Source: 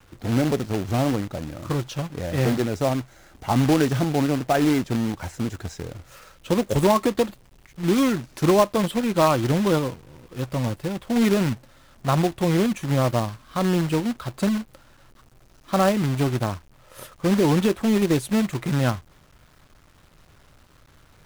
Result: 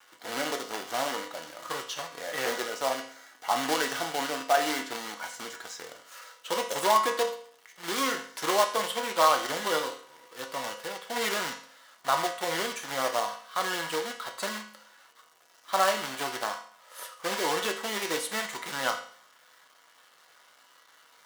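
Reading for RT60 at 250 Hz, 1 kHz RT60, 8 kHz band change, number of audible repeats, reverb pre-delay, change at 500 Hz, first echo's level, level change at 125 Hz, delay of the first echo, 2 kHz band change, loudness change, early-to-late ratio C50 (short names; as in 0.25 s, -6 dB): 0.55 s, 0.55 s, +1.0 dB, none, 4 ms, -7.5 dB, none, -28.5 dB, none, +1.0 dB, -7.0 dB, 9.0 dB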